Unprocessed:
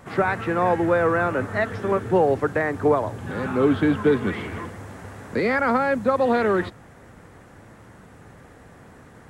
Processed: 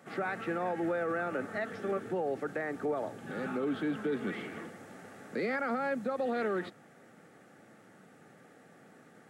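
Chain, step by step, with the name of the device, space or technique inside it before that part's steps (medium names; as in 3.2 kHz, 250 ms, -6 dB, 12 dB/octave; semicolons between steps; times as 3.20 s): PA system with an anti-feedback notch (high-pass 160 Hz 24 dB/octave; Butterworth band-stop 1 kHz, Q 5.3; peak limiter -16.5 dBFS, peak gain reduction 8 dB); trim -8.5 dB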